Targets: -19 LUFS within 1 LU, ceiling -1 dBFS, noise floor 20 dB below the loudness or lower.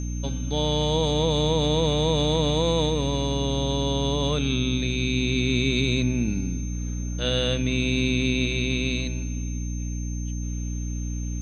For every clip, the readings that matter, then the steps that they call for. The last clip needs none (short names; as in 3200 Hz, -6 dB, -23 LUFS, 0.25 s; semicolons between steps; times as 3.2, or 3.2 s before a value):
hum 60 Hz; harmonics up to 300 Hz; hum level -27 dBFS; steady tone 6300 Hz; tone level -41 dBFS; loudness -24.5 LUFS; peak -10.0 dBFS; loudness target -19.0 LUFS
-> de-hum 60 Hz, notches 5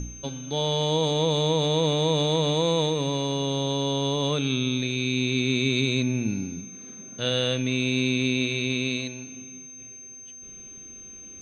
hum none; steady tone 6300 Hz; tone level -41 dBFS
-> notch 6300 Hz, Q 30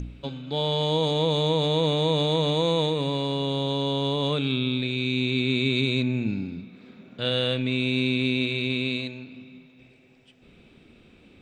steady tone none; loudness -25.0 LUFS; peak -11.0 dBFS; loudness target -19.0 LUFS
-> gain +6 dB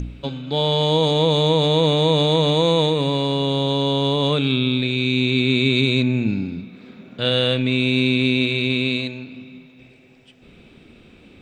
loudness -19.0 LUFS; peak -5.0 dBFS; noise floor -49 dBFS